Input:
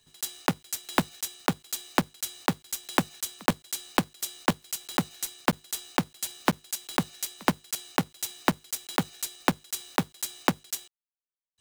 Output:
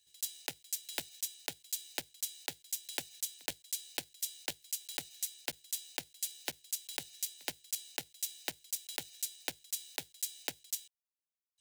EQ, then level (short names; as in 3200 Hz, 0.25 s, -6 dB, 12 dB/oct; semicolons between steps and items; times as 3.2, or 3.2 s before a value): passive tone stack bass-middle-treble 5-5-5; low shelf 66 Hz -12 dB; fixed phaser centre 480 Hz, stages 4; +2.0 dB